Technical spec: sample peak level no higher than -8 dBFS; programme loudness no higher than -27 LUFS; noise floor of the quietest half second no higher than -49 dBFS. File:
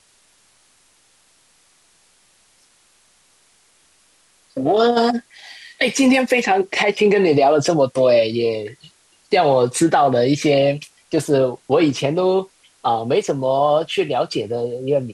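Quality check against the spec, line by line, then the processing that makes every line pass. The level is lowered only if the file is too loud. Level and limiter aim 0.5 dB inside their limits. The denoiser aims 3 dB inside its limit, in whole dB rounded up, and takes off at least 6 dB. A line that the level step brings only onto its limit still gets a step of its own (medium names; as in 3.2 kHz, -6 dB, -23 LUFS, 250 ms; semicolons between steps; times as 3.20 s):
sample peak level -6.0 dBFS: fail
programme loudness -17.5 LUFS: fail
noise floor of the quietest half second -57 dBFS: pass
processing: trim -10 dB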